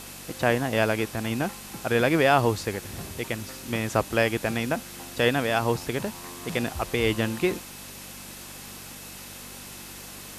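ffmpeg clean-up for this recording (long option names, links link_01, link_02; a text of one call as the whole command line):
ffmpeg -i in.wav -af "adeclick=threshold=4,bandreject=frequency=48.5:width_type=h:width=4,bandreject=frequency=97:width_type=h:width=4,bandreject=frequency=145.5:width_type=h:width=4,bandreject=frequency=194:width_type=h:width=4,bandreject=frequency=242.5:width_type=h:width=4,bandreject=frequency=2600:width=30,afwtdn=0.0089" out.wav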